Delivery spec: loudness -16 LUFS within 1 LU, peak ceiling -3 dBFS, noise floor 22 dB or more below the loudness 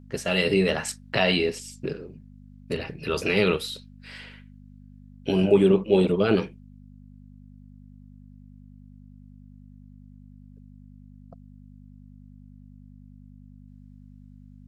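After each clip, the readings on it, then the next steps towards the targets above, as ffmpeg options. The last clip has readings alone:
hum 50 Hz; highest harmonic 250 Hz; hum level -46 dBFS; loudness -24.0 LUFS; peak level -7.0 dBFS; loudness target -16.0 LUFS
-> -af "bandreject=f=50:t=h:w=4,bandreject=f=100:t=h:w=4,bandreject=f=150:t=h:w=4,bandreject=f=200:t=h:w=4,bandreject=f=250:t=h:w=4"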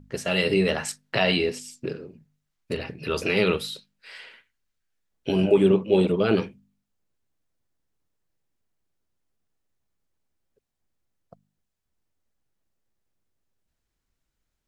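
hum not found; loudness -24.0 LUFS; peak level -7.0 dBFS; loudness target -16.0 LUFS
-> -af "volume=2.51,alimiter=limit=0.708:level=0:latency=1"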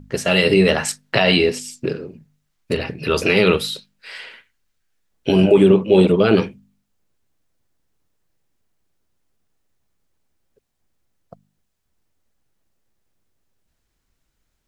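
loudness -16.5 LUFS; peak level -3.0 dBFS; noise floor -73 dBFS

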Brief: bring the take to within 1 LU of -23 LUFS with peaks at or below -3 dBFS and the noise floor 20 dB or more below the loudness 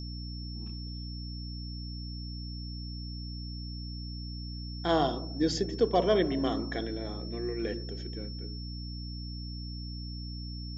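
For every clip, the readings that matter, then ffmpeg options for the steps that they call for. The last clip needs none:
hum 60 Hz; highest harmonic 300 Hz; hum level -37 dBFS; steady tone 5.4 kHz; tone level -45 dBFS; loudness -34.0 LUFS; peak level -12.0 dBFS; loudness target -23.0 LUFS
-> -af "bandreject=f=60:t=h:w=4,bandreject=f=120:t=h:w=4,bandreject=f=180:t=h:w=4,bandreject=f=240:t=h:w=4,bandreject=f=300:t=h:w=4"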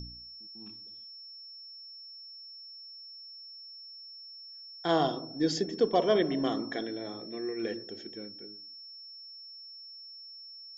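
hum not found; steady tone 5.4 kHz; tone level -45 dBFS
-> -af "bandreject=f=5400:w=30"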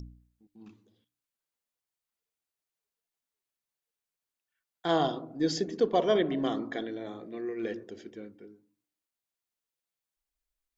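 steady tone not found; loudness -30.5 LUFS; peak level -13.0 dBFS; loudness target -23.0 LUFS
-> -af "volume=2.37"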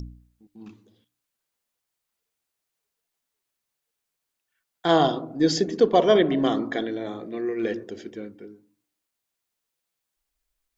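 loudness -23.0 LUFS; peak level -5.5 dBFS; noise floor -83 dBFS

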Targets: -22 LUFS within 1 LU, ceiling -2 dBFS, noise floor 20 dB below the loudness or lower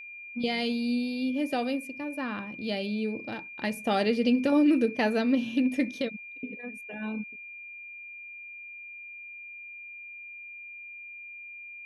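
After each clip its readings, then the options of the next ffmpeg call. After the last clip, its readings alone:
steady tone 2.4 kHz; tone level -41 dBFS; loudness -29.0 LUFS; peak level -14.0 dBFS; loudness target -22.0 LUFS
-> -af "bandreject=f=2400:w=30"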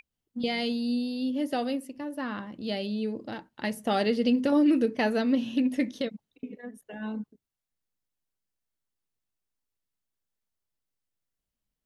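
steady tone not found; loudness -28.5 LUFS; peak level -14.5 dBFS; loudness target -22.0 LUFS
-> -af "volume=2.11"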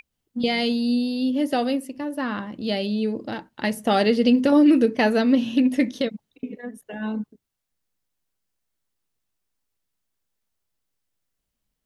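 loudness -22.0 LUFS; peak level -8.0 dBFS; noise floor -81 dBFS

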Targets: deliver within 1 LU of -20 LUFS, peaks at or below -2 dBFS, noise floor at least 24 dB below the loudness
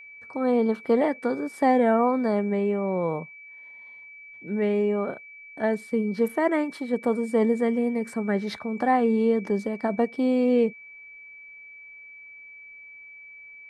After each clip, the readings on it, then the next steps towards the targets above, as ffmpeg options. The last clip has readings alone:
steady tone 2.3 kHz; tone level -43 dBFS; loudness -24.5 LUFS; peak level -10.0 dBFS; loudness target -20.0 LUFS
-> -af "bandreject=f=2300:w=30"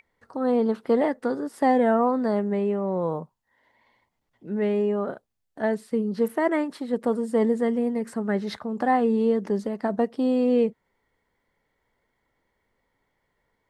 steady tone not found; loudness -25.0 LUFS; peak level -10.0 dBFS; loudness target -20.0 LUFS
-> -af "volume=1.78"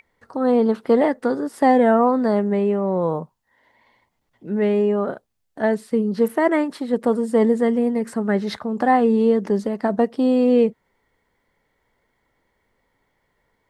loudness -20.0 LUFS; peak level -5.0 dBFS; noise floor -71 dBFS

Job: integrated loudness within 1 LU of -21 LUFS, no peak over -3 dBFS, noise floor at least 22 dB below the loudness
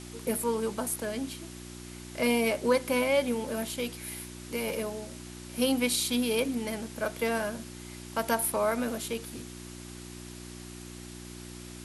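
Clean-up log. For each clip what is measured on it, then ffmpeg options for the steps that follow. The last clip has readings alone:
hum 60 Hz; highest harmonic 360 Hz; hum level -43 dBFS; noise floor -44 dBFS; noise floor target -52 dBFS; loudness -30.0 LUFS; peak level -14.0 dBFS; loudness target -21.0 LUFS
-> -af "bandreject=f=60:t=h:w=4,bandreject=f=120:t=h:w=4,bandreject=f=180:t=h:w=4,bandreject=f=240:t=h:w=4,bandreject=f=300:t=h:w=4,bandreject=f=360:t=h:w=4"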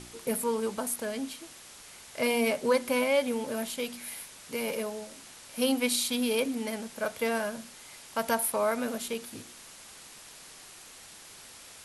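hum not found; noise floor -50 dBFS; noise floor target -52 dBFS
-> -af "afftdn=nr=6:nf=-50"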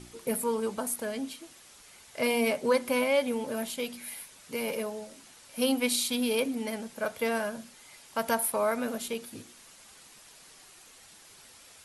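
noise floor -54 dBFS; loudness -30.0 LUFS; peak level -13.5 dBFS; loudness target -21.0 LUFS
-> -af "volume=2.82"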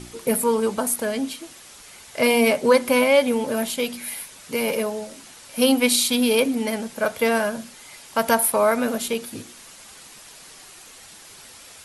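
loudness -21.0 LUFS; peak level -4.5 dBFS; noise floor -45 dBFS

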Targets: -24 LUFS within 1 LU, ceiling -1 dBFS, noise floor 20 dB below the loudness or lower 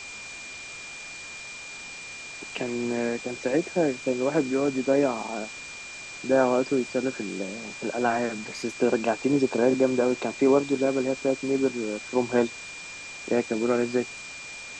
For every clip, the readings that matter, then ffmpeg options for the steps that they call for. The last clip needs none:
steady tone 2.4 kHz; tone level -39 dBFS; noise floor -40 dBFS; noise floor target -46 dBFS; loudness -26.0 LUFS; peak level -8.0 dBFS; loudness target -24.0 LUFS
-> -af "bandreject=f=2400:w=30"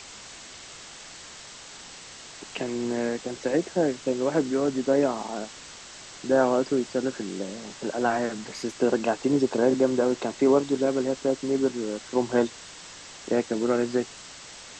steady tone not found; noise floor -44 dBFS; noise floor target -46 dBFS
-> -af "afftdn=nr=6:nf=-44"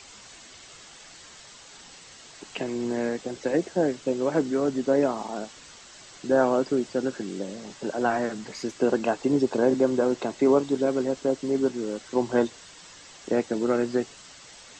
noise floor -48 dBFS; loudness -26.0 LUFS; peak level -8.5 dBFS; loudness target -24.0 LUFS
-> -af "volume=1.26"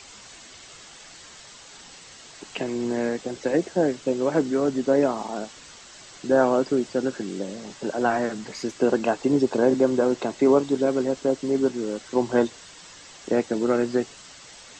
loudness -24.0 LUFS; peak level -6.5 dBFS; noise floor -46 dBFS

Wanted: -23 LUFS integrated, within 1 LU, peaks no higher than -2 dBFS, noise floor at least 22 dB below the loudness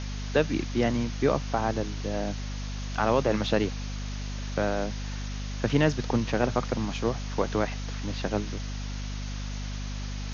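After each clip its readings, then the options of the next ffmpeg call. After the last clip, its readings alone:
hum 50 Hz; highest harmonic 250 Hz; hum level -31 dBFS; noise floor -34 dBFS; noise floor target -52 dBFS; loudness -29.5 LUFS; peak level -9.0 dBFS; loudness target -23.0 LUFS
-> -af "bandreject=f=50:t=h:w=4,bandreject=f=100:t=h:w=4,bandreject=f=150:t=h:w=4,bandreject=f=200:t=h:w=4,bandreject=f=250:t=h:w=4"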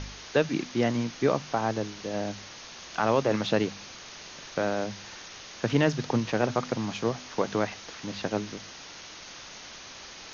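hum not found; noise floor -45 dBFS; noise floor target -51 dBFS
-> -af "afftdn=nr=6:nf=-45"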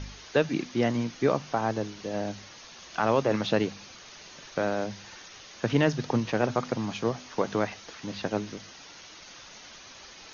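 noise floor -48 dBFS; noise floor target -51 dBFS
-> -af "afftdn=nr=6:nf=-48"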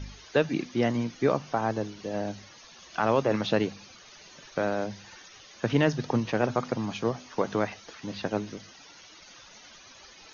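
noise floor -51 dBFS; loudness -29.0 LUFS; peak level -10.0 dBFS; loudness target -23.0 LUFS
-> -af "volume=2"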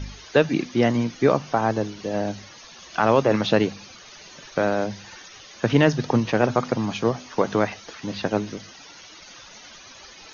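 loudness -23.0 LUFS; peak level -4.0 dBFS; noise floor -45 dBFS

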